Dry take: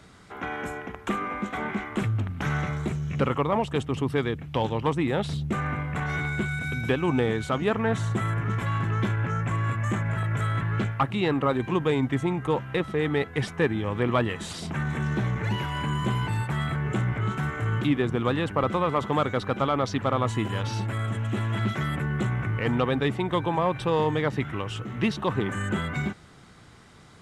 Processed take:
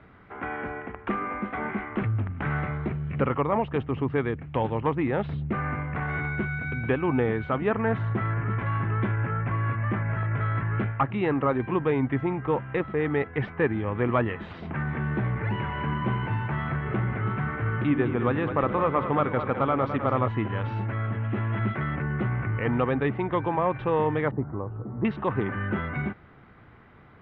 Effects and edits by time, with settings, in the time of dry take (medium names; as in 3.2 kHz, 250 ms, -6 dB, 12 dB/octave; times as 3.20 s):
15.42–20.28 s: two-band feedback delay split 400 Hz, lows 85 ms, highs 211 ms, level -8.5 dB
24.31–25.05 s: low-pass 1 kHz 24 dB/octave
whole clip: low-pass 2.4 kHz 24 dB/octave; peaking EQ 170 Hz -4 dB 0.28 oct